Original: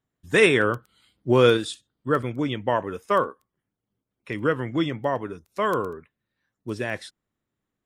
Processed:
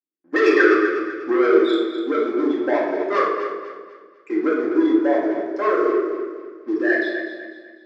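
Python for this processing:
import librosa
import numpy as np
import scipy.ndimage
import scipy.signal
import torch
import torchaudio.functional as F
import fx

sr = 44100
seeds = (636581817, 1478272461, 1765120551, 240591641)

y = fx.envelope_sharpen(x, sr, power=3.0)
y = fx.leveller(y, sr, passes=3)
y = fx.cabinet(y, sr, low_hz=330.0, low_slope=24, high_hz=5300.0, hz=(340.0, 490.0, 930.0, 1600.0, 2800.0, 3900.0), db=(7, -9, -6, 6, -9, -8))
y = fx.echo_feedback(y, sr, ms=248, feedback_pct=37, wet_db=-10.0)
y = fx.room_shoebox(y, sr, seeds[0], volume_m3=580.0, walls='mixed', distance_m=2.1)
y = y * 10.0 ** (-6.0 / 20.0)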